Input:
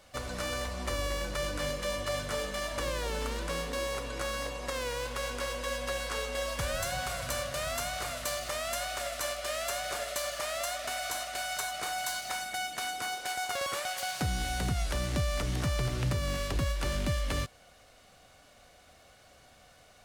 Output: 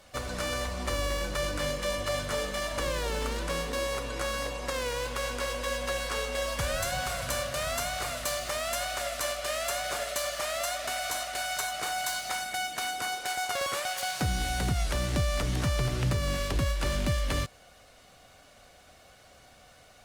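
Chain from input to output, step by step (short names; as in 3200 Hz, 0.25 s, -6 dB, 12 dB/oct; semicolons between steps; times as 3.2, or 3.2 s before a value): gain +2.5 dB; Opus 48 kbps 48000 Hz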